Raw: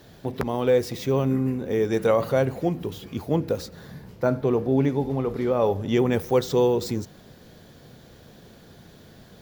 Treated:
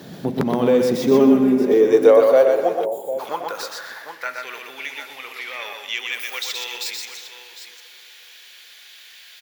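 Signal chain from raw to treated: soft clip -10.5 dBFS, distortion -24 dB; on a send at -13 dB: reverb RT60 4.4 s, pre-delay 10 ms; on the sum: high-pass sweep 180 Hz -> 2400 Hz, 0.73–4.64; 4.29–5.39 high shelf 8200 Hz +5.5 dB; tapped delay 0.123/0.253/0.753 s -4.5/-18/-14.5 dB; in parallel at +2 dB: compressor, threshold -36 dBFS, peak gain reduction 24 dB; 1.11–1.74 on the sum: comb 4.9 ms, depth 84%; 2.85–3.19 spectral gain 960–6800 Hz -22 dB; gain +1.5 dB

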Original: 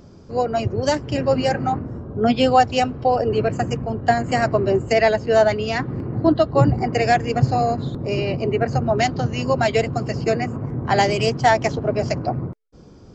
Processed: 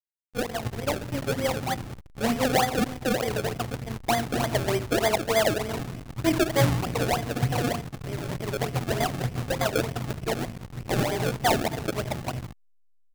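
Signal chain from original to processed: elliptic low-pass 4800 Hz; notches 50/100/150/200/250/300/350/400 Hz; feedback echo 0.127 s, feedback 50%, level -20 dB; on a send at -6 dB: reverb RT60 1.5 s, pre-delay 12 ms; on the sum: backlash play -18 dBFS; decimation with a swept rate 31×, swing 100% 3.3 Hz; gain -6 dB

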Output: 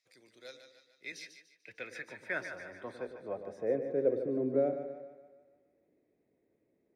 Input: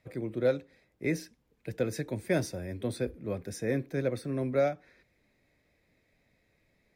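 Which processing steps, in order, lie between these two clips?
band-pass sweep 5700 Hz -> 360 Hz, 0.49–4.38; on a send: split-band echo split 560 Hz, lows 0.106 s, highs 0.148 s, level -8 dB; 1.12–1.76 on the sum: three-band expander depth 70%; gain +4 dB

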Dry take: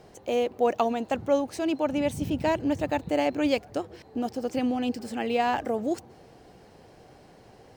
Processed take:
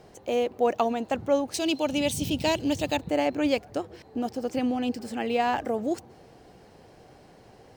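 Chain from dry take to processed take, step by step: 1.54–2.97 resonant high shelf 2400 Hz +9.5 dB, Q 1.5

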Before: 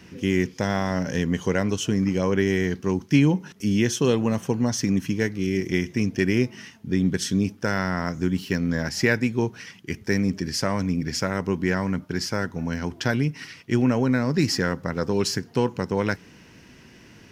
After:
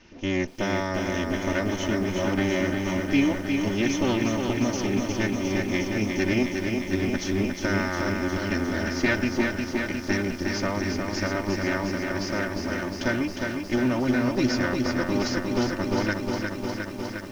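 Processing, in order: minimum comb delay 3.3 ms; elliptic low-pass 6300 Hz; lo-fi delay 0.357 s, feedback 80%, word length 8-bit, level -4.5 dB; gain -3 dB

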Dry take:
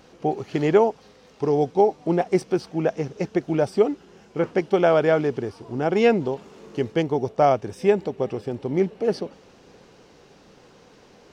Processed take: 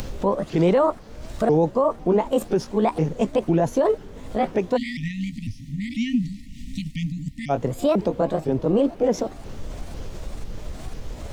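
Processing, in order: repeated pitch sweeps +8 st, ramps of 0.497 s; low shelf 450 Hz +8.5 dB; added noise brown -43 dBFS; upward compressor, threshold -24 dBFS; limiter -15 dBFS, peak gain reduction 12.5 dB; spectral delete 4.77–7.5, 280–1800 Hz; three-band expander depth 40%; gain +3.5 dB

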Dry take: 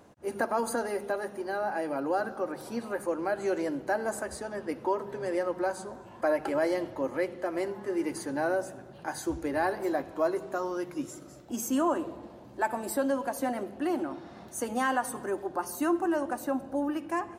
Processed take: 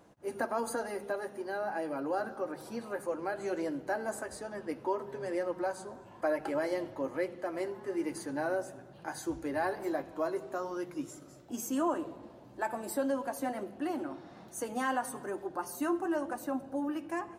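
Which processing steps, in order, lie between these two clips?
flange 1.1 Hz, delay 5.8 ms, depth 2.1 ms, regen -58%

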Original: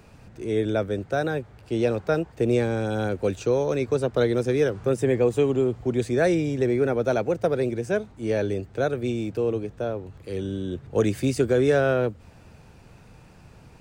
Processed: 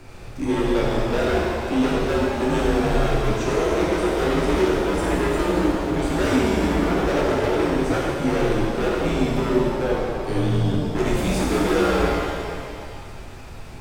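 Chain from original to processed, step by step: transient shaper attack +1 dB, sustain -4 dB; in parallel at -1 dB: compressor, threshold -30 dBFS, peak gain reduction 14 dB; on the sum: hard clip -23.5 dBFS, distortion -6 dB; frequency shift -79 Hz; shimmer reverb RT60 2 s, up +7 st, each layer -8 dB, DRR -5.5 dB

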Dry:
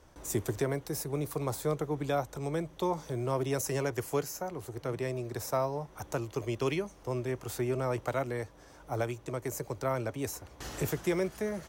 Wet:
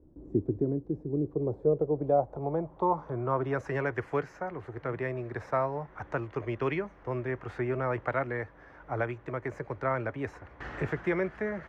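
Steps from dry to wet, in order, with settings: low-pass sweep 310 Hz -> 1800 Hz, 1.05–3.77

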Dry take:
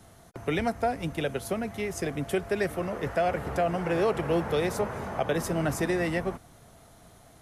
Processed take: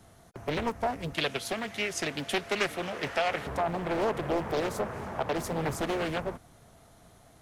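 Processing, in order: 1.14–3.47 weighting filter D; Doppler distortion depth 0.96 ms; gain -2.5 dB

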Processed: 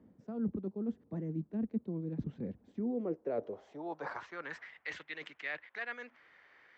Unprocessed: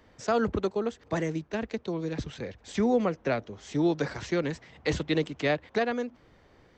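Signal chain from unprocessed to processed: reverse; compressor 10:1, threshold -34 dBFS, peak gain reduction 14.5 dB; reverse; band-pass sweep 210 Hz -> 1900 Hz, 2.58–4.75; gain +7 dB

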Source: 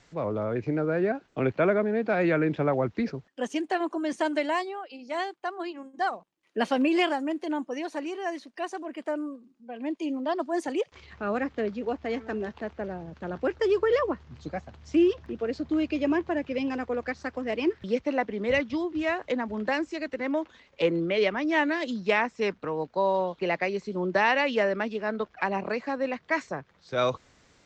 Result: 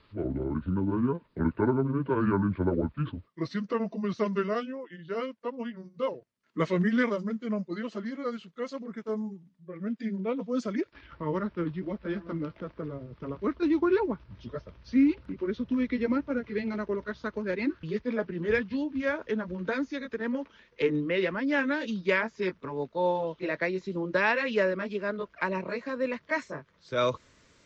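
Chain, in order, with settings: gliding pitch shift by -8.5 st ending unshifted; Butterworth band-stop 770 Hz, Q 4.5; MP3 48 kbps 48000 Hz

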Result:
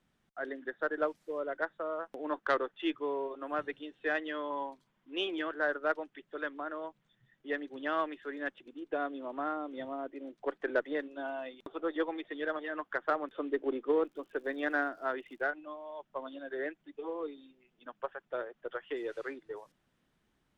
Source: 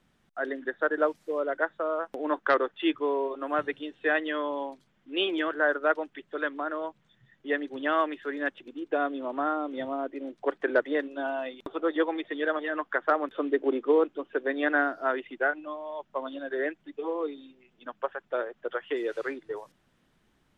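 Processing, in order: 4.5–5.22 bell 1000 Hz +8.5 dB 0.31 oct; 14.04–15.42 crackle 110/s -47 dBFS; added harmonics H 3 -23 dB, 8 -42 dB, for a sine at -10 dBFS; gain -5 dB

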